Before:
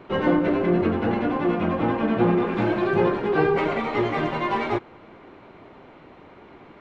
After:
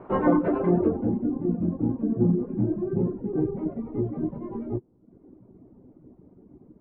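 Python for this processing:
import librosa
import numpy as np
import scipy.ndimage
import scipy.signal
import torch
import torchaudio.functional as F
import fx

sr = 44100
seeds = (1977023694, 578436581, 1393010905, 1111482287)

y = fx.doubler(x, sr, ms=16.0, db=-7.5)
y = fx.dereverb_blind(y, sr, rt60_s=0.82)
y = fx.filter_sweep_lowpass(y, sr, from_hz=1000.0, to_hz=260.0, start_s=0.63, end_s=1.18, q=1.2)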